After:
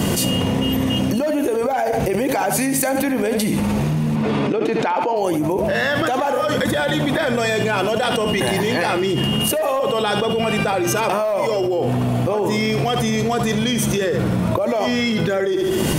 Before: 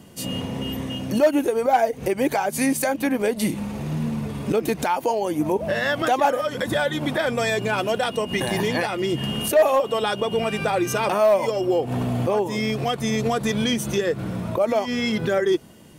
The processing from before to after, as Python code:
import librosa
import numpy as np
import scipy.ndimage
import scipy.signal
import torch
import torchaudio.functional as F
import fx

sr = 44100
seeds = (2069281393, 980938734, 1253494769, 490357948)

p1 = fx.bandpass_edges(x, sr, low_hz=220.0, high_hz=fx.line((4.15, 4200.0), (5.15, 3000.0)), at=(4.15, 5.15), fade=0.02)
p2 = p1 + fx.echo_feedback(p1, sr, ms=72, feedback_pct=44, wet_db=-12.0, dry=0)
p3 = fx.env_flatten(p2, sr, amount_pct=100)
y = F.gain(torch.from_numpy(p3), -7.0).numpy()